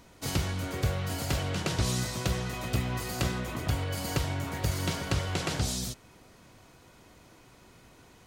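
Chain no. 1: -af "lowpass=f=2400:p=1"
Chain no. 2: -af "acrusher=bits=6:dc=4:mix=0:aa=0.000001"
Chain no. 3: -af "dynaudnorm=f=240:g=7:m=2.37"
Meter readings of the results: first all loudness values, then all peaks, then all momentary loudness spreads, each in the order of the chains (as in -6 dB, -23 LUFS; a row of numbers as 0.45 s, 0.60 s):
-32.5 LUFS, -30.5 LUFS, -24.5 LUFS; -16.5 dBFS, -14.5 dBFS, -8.0 dBFS; 3 LU, 4 LU, 8 LU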